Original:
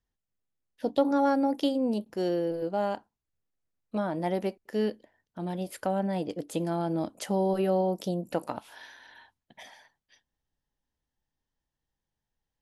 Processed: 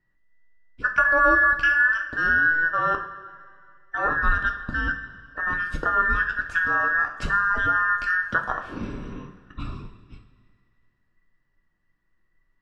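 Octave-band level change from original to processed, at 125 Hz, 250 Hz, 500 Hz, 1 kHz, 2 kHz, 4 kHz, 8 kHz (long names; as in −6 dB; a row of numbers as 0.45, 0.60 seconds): −0.5 dB, −8.0 dB, −5.0 dB, +9.5 dB, +28.0 dB, +0.5 dB, can't be measured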